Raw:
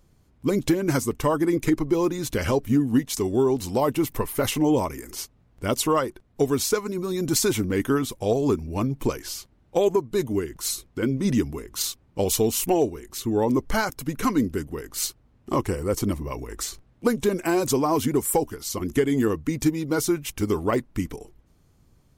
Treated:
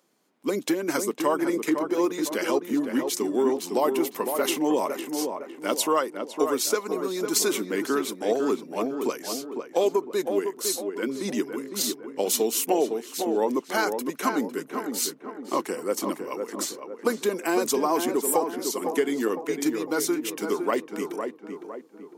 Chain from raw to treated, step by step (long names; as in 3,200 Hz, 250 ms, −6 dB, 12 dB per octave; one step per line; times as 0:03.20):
Bessel high-pass filter 350 Hz, order 8
tape delay 506 ms, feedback 51%, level −4.5 dB, low-pass 1,400 Hz